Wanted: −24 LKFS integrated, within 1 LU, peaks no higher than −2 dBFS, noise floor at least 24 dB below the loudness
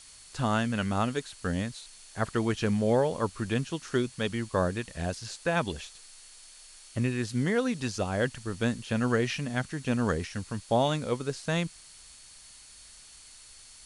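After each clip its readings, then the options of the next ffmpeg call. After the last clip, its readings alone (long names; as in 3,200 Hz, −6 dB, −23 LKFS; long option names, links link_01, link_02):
interfering tone 4,400 Hz; level of the tone −58 dBFS; background noise floor −52 dBFS; target noise floor −54 dBFS; integrated loudness −30.0 LKFS; sample peak −13.0 dBFS; target loudness −24.0 LKFS
→ -af "bandreject=frequency=4400:width=30"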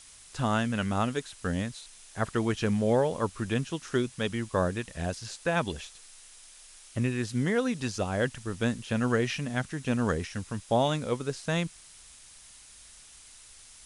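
interfering tone none found; background noise floor −52 dBFS; target noise floor −54 dBFS
→ -af "afftdn=noise_reduction=6:noise_floor=-52"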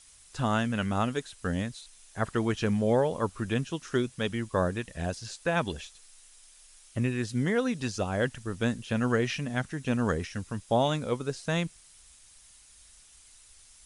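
background noise floor −56 dBFS; integrated loudness −30.0 LKFS; sample peak −13.0 dBFS; target loudness −24.0 LKFS
→ -af "volume=6dB"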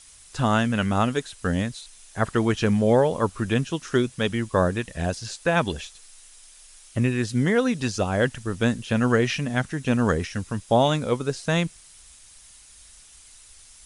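integrated loudness −24.0 LKFS; sample peak −7.0 dBFS; background noise floor −50 dBFS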